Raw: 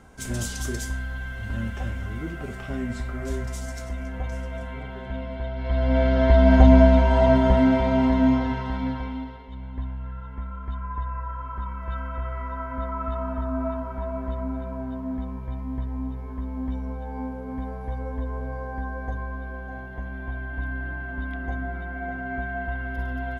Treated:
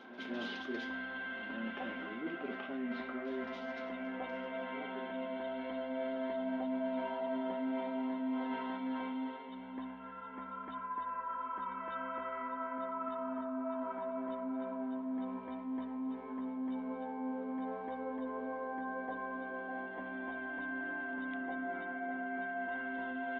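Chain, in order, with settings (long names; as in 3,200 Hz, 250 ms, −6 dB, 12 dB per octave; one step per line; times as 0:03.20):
elliptic band-pass filter 250–3,400 Hz, stop band 40 dB
echo ahead of the sound 205 ms −17 dB
reversed playback
downward compressor 6 to 1, threshold −35 dBFS, peak gain reduction 20.5 dB
reversed playback
level −1 dB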